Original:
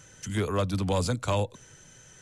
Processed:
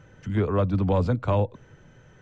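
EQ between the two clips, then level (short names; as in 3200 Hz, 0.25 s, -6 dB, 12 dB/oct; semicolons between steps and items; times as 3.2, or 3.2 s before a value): tape spacing loss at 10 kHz 29 dB; high shelf 3700 Hz -9.5 dB; +5.5 dB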